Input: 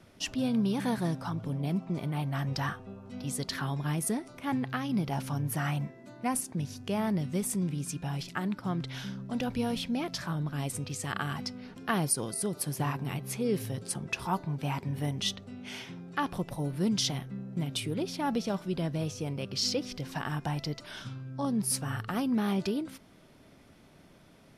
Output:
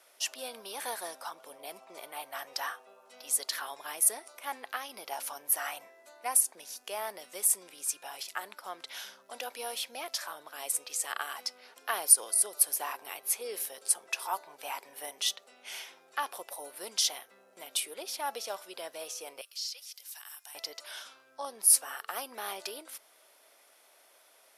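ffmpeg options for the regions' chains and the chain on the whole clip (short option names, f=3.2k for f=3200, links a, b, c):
-filter_complex "[0:a]asettb=1/sr,asplit=3[a][b][c];[a]atrim=end=19.414[d];[b]atrim=start=19.41:end=20.55,asetpts=PTS-STARTPTS,afade=t=in:d=0.004:c=qsin,afade=t=out:st=1.136:d=0.004:c=qsin,acrossover=split=4600[e][f];[f]acompressor=threshold=-48dB:ratio=4:attack=1:release=60[g];[e][g]amix=inputs=2:normalize=0,highpass=f=690:p=1,aderivative[h];[c]atrim=start=20.546[i];[d][h]acrossfade=d=0.004:c1=hsin:c2=qsin[j];[j][i]acrossfade=d=0.004:c1=qsin:c2=hsin,highpass=f=530:w=0.5412,highpass=f=530:w=1.3066,equalizer=f=12k:w=0.61:g=13.5,volume=-1.5dB"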